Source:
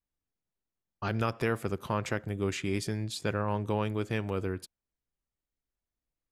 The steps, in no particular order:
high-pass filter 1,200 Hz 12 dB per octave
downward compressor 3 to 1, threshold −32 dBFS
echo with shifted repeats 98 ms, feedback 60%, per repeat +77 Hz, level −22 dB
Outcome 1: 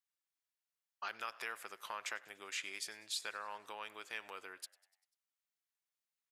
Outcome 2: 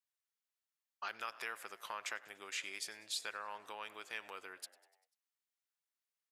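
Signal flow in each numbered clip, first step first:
downward compressor, then high-pass filter, then echo with shifted repeats
echo with shifted repeats, then downward compressor, then high-pass filter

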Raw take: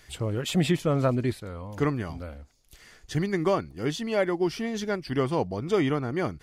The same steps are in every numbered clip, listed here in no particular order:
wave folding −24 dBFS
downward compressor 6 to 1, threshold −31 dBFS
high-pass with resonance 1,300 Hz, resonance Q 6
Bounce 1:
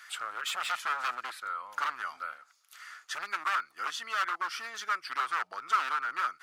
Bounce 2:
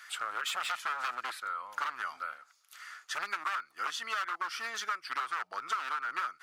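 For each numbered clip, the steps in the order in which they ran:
wave folding, then downward compressor, then high-pass with resonance
wave folding, then high-pass with resonance, then downward compressor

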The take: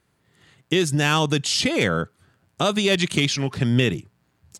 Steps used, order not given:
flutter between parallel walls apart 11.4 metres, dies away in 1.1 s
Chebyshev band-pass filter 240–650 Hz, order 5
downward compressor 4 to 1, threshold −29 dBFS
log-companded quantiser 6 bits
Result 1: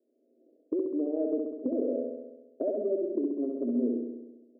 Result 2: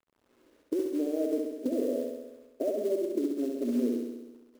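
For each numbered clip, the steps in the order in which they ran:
log-companded quantiser, then Chebyshev band-pass filter, then downward compressor, then flutter between parallel walls
Chebyshev band-pass filter, then downward compressor, then log-companded quantiser, then flutter between parallel walls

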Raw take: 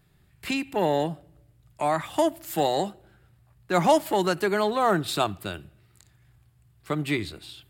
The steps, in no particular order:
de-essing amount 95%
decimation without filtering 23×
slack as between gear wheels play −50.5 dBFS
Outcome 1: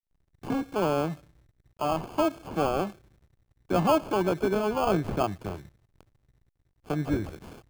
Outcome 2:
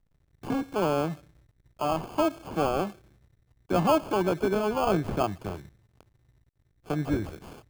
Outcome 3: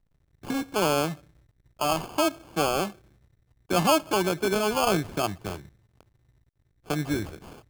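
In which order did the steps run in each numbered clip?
decimation without filtering, then de-essing, then slack as between gear wheels
slack as between gear wheels, then decimation without filtering, then de-essing
de-essing, then slack as between gear wheels, then decimation without filtering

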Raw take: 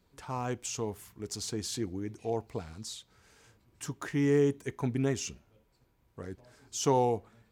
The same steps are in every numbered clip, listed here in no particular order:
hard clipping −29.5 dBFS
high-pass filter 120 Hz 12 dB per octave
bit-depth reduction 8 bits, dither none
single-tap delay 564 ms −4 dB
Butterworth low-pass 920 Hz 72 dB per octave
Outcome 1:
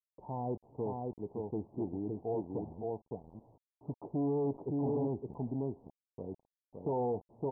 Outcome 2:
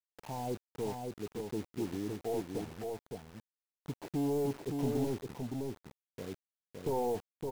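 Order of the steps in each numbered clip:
single-tap delay, then hard clipping, then high-pass filter, then bit-depth reduction, then Butterworth low-pass
high-pass filter, then hard clipping, then Butterworth low-pass, then bit-depth reduction, then single-tap delay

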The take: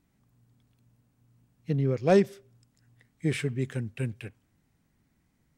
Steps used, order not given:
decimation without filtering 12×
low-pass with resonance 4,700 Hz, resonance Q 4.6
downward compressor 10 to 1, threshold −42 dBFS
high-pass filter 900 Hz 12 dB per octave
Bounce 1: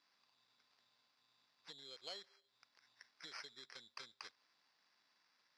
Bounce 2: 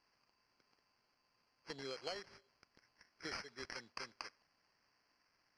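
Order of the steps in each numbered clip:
decimation without filtering, then low-pass with resonance, then downward compressor, then high-pass filter
high-pass filter, then decimation without filtering, then low-pass with resonance, then downward compressor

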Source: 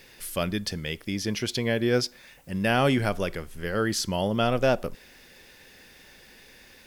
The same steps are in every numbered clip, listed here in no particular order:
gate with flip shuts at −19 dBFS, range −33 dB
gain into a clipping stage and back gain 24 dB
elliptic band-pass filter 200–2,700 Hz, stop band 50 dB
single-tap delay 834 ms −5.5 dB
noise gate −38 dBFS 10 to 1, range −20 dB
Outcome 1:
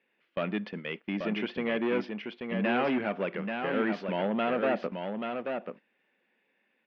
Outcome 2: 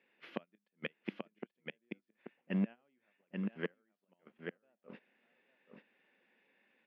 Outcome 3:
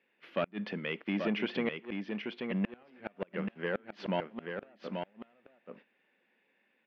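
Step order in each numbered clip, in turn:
gain into a clipping stage and back, then gate with flip, then elliptic band-pass filter, then noise gate, then single-tap delay
gate with flip, then noise gate, then single-tap delay, then gain into a clipping stage and back, then elliptic band-pass filter
noise gate, then gain into a clipping stage and back, then elliptic band-pass filter, then gate with flip, then single-tap delay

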